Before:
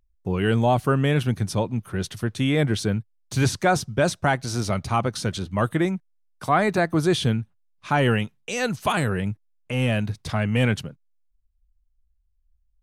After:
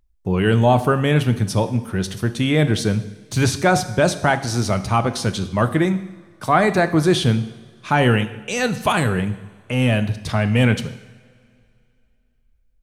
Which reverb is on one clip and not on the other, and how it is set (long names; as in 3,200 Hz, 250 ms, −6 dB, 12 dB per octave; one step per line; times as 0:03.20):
coupled-rooms reverb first 0.86 s, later 2.7 s, from −18 dB, DRR 10 dB
level +4 dB